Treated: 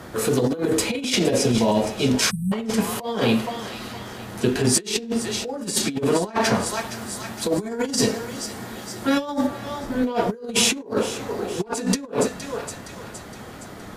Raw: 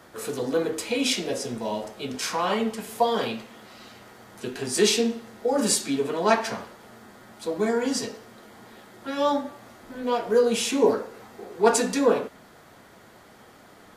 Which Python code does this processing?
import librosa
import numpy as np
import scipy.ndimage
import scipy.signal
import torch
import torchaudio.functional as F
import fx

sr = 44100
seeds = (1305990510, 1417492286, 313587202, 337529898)

y = fx.clip_asym(x, sr, top_db=-10.5, bottom_db=-8.5)
y = fx.low_shelf(y, sr, hz=260.0, db=10.0)
y = fx.echo_thinned(y, sr, ms=466, feedback_pct=57, hz=1200.0, wet_db=-14)
y = fx.spec_erase(y, sr, start_s=2.31, length_s=0.21, low_hz=230.0, high_hz=7900.0)
y = fx.high_shelf(y, sr, hz=5600.0, db=6.5, at=(6.66, 9.47))
y = fx.over_compress(y, sr, threshold_db=-26.0, ratio=-0.5)
y = F.gain(torch.from_numpy(y), 4.5).numpy()